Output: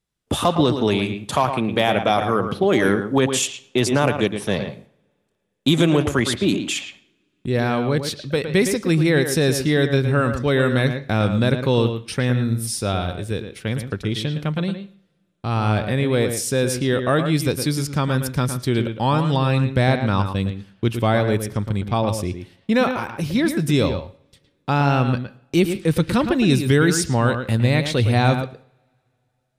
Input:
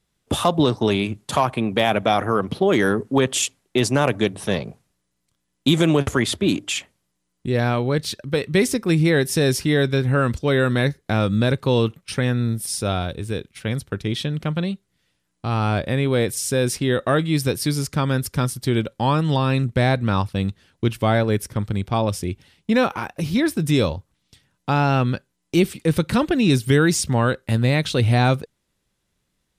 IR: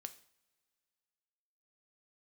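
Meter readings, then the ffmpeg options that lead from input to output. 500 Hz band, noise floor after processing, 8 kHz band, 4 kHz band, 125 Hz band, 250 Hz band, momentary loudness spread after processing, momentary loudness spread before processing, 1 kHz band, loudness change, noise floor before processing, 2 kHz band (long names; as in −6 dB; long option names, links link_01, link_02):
+0.5 dB, −69 dBFS, 0.0 dB, +0.5 dB, +0.5 dB, +0.5 dB, 8 LU, 8 LU, +0.5 dB, +0.5 dB, −74 dBFS, +0.5 dB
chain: -filter_complex "[0:a]agate=range=-9dB:threshold=-51dB:ratio=16:detection=peak,asplit=2[link_01][link_02];[1:a]atrim=start_sample=2205,lowpass=3900,adelay=112[link_03];[link_02][link_03]afir=irnorm=-1:irlink=0,volume=-3dB[link_04];[link_01][link_04]amix=inputs=2:normalize=0"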